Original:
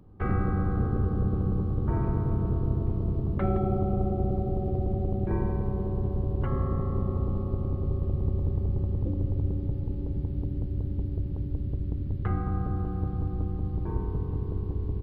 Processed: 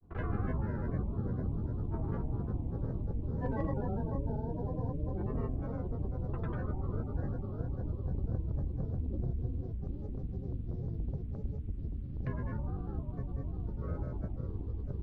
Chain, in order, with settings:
dynamic equaliser 2,100 Hz, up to −6 dB, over −59 dBFS, Q 1.9
granular cloud, pitch spread up and down by 7 semitones
level −6.5 dB

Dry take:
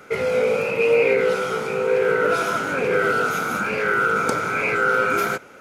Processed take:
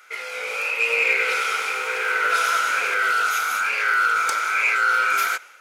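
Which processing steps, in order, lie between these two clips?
high-pass filter 1,500 Hz 12 dB per octave
automatic gain control gain up to 6 dB
soft clipping −10.5 dBFS, distortion −23 dB
0:00.70–0:02.94: feedback echo at a low word length 97 ms, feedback 80%, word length 9 bits, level −8 dB

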